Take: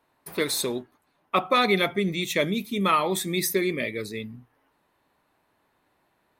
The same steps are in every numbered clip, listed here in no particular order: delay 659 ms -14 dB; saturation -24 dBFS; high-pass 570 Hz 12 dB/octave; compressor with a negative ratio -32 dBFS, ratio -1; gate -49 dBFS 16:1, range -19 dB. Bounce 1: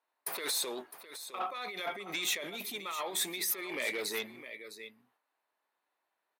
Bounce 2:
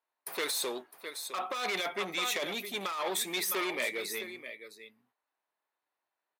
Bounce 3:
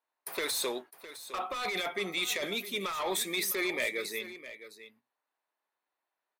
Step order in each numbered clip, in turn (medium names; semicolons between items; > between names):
compressor with a negative ratio > gate > delay > saturation > high-pass; gate > delay > saturation > high-pass > compressor with a negative ratio; high-pass > gate > saturation > compressor with a negative ratio > delay